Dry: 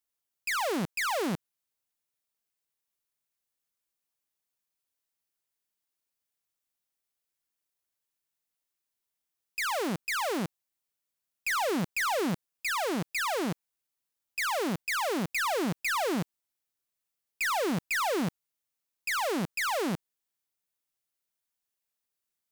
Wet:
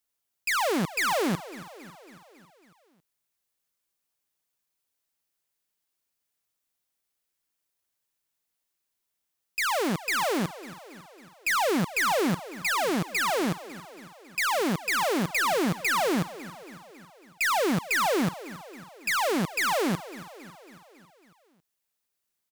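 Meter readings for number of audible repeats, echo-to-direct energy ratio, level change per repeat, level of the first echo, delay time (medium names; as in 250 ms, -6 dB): 5, -14.5 dB, -4.5 dB, -16.5 dB, 275 ms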